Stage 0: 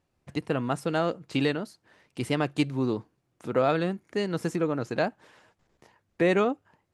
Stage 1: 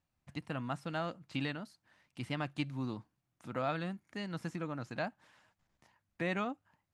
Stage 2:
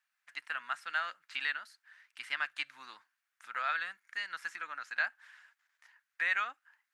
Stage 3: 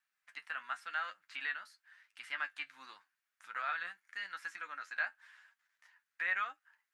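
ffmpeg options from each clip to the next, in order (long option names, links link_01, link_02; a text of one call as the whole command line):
ffmpeg -i in.wav -filter_complex "[0:a]acrossover=split=4800[link_01][link_02];[link_02]acompressor=threshold=-53dB:ratio=4:attack=1:release=60[link_03];[link_01][link_03]amix=inputs=2:normalize=0,equalizer=frequency=420:width_type=o:width=0.7:gain=-13,volume=-7.5dB" out.wav
ffmpeg -i in.wav -af "highpass=frequency=1600:width_type=q:width=3.2,volume=2dB" out.wav
ffmpeg -i in.wav -filter_complex "[0:a]flanger=delay=9.5:depth=2.1:regen=43:speed=0.9:shape=triangular,acrossover=split=2800[link_01][link_02];[link_02]acompressor=threshold=-52dB:ratio=4:attack=1:release=60[link_03];[link_01][link_03]amix=inputs=2:normalize=0,volume=1dB" out.wav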